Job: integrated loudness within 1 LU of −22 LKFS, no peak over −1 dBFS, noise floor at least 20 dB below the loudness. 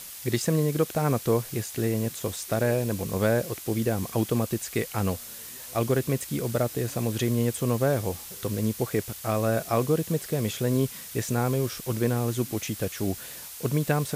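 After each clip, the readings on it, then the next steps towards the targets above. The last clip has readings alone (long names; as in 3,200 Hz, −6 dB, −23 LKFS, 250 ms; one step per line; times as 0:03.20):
background noise floor −41 dBFS; target noise floor −48 dBFS; integrated loudness −27.5 LKFS; sample peak −11.0 dBFS; target loudness −22.0 LKFS
→ broadband denoise 7 dB, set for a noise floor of −41 dBFS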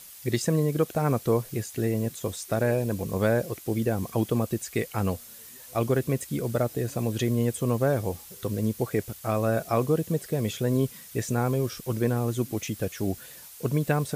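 background noise floor −46 dBFS; target noise floor −48 dBFS
→ broadband denoise 6 dB, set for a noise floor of −46 dBFS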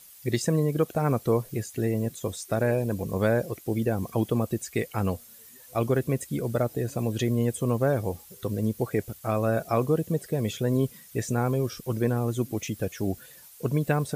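background noise floor −50 dBFS; integrated loudness −28.0 LKFS; sample peak −11.5 dBFS; target loudness −22.0 LKFS
→ level +6 dB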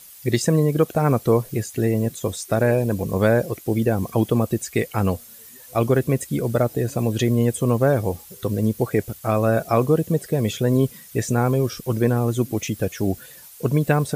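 integrated loudness −22.0 LKFS; sample peak −5.5 dBFS; background noise floor −44 dBFS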